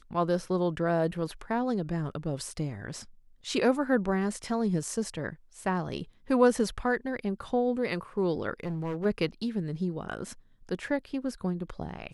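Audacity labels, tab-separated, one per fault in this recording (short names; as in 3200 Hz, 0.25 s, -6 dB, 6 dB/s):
8.600000	9.060000	clipped -29 dBFS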